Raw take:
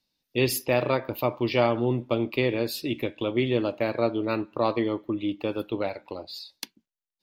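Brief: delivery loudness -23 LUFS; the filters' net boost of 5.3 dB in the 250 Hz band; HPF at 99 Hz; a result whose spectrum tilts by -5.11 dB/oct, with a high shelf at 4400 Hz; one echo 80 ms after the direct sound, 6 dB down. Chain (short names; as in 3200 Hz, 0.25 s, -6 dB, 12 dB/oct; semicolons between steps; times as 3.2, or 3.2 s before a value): HPF 99 Hz; bell 250 Hz +7 dB; high shelf 4400 Hz +7 dB; echo 80 ms -6 dB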